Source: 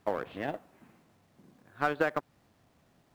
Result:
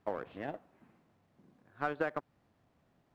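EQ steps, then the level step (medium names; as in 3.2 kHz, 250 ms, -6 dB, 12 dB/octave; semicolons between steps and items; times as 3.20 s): treble shelf 4.2 kHz -11 dB; -5.0 dB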